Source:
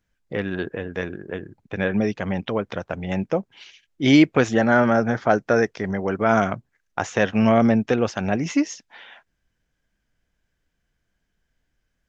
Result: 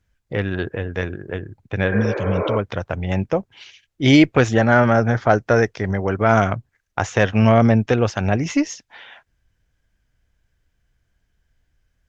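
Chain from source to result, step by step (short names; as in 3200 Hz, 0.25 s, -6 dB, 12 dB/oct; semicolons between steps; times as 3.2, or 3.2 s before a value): spectral repair 1.95–2.54, 280–2500 Hz both; resonant low shelf 140 Hz +6.5 dB, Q 1.5; added harmonics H 4 -28 dB, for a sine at -3.5 dBFS; gain +2.5 dB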